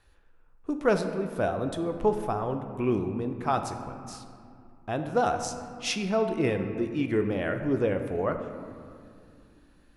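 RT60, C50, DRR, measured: 2.4 s, 8.0 dB, 6.0 dB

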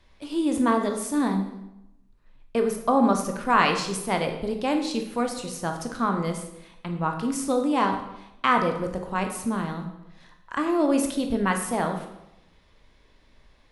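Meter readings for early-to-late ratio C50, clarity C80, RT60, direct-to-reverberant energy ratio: 7.5 dB, 10.0 dB, 0.90 s, 4.0 dB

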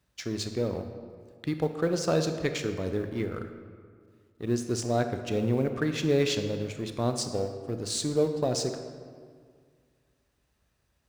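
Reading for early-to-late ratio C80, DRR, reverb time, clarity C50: 9.0 dB, 7.0 dB, 1.9 s, 8.0 dB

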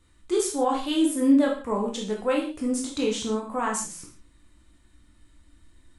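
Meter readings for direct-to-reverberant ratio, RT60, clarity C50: −1.5 dB, non-exponential decay, 6.0 dB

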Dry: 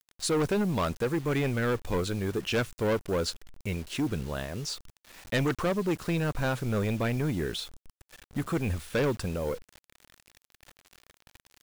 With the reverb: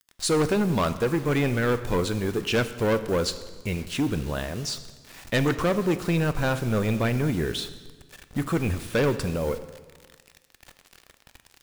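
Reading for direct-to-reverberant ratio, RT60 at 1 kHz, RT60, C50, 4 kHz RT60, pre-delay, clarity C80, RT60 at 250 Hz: 10.5 dB, 1.4 s, 1.4 s, 13.0 dB, 1.3 s, 3 ms, 14.0 dB, 1.5 s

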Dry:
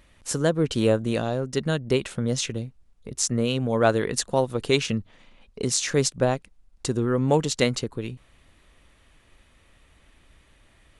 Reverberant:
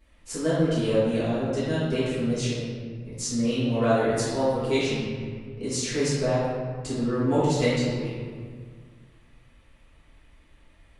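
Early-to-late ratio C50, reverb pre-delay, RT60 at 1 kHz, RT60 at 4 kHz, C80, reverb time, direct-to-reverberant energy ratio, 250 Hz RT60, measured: −3.0 dB, 4 ms, 1.7 s, 1.1 s, 0.0 dB, 1.8 s, −12.5 dB, 2.2 s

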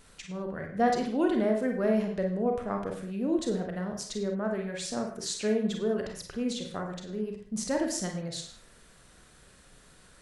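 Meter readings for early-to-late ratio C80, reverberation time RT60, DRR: 9.5 dB, non-exponential decay, 2.0 dB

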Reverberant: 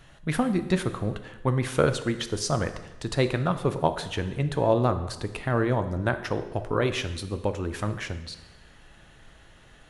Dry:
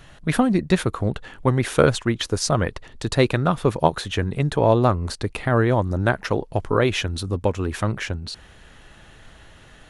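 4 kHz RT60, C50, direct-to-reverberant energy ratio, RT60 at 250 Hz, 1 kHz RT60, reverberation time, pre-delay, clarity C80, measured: 1.0 s, 11.5 dB, 9.0 dB, 1.1 s, 1.1 s, 1.1 s, 4 ms, 13.5 dB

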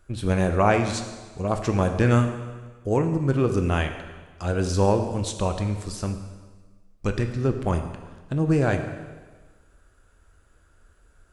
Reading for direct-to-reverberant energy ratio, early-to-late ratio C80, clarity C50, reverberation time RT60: 6.0 dB, 9.5 dB, 8.0 dB, 1.4 s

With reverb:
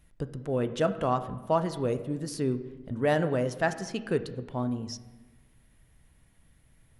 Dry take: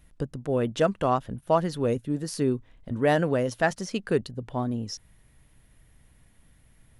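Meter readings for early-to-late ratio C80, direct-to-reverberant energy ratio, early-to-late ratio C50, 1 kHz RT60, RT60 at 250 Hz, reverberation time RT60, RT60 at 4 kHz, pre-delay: 14.0 dB, 9.5 dB, 12.5 dB, 1.1 s, 1.4 s, 1.2 s, 0.85 s, 3 ms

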